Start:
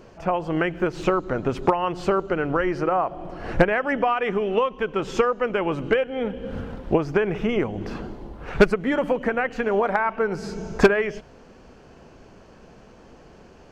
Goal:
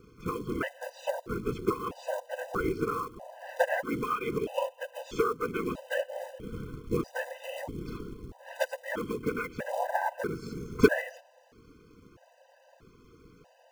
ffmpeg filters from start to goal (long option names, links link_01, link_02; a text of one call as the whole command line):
ffmpeg -i in.wav -af "afftfilt=real='hypot(re,im)*cos(2*PI*random(0))':imag='hypot(re,im)*sin(2*PI*random(1))':win_size=512:overlap=0.75,acrusher=bits=5:mode=log:mix=0:aa=0.000001,afftfilt=real='re*gt(sin(2*PI*0.78*pts/sr)*(1-2*mod(floor(b*sr/1024/510),2)),0)':imag='im*gt(sin(2*PI*0.78*pts/sr)*(1-2*mod(floor(b*sr/1024/510),2)),0)':win_size=1024:overlap=0.75" out.wav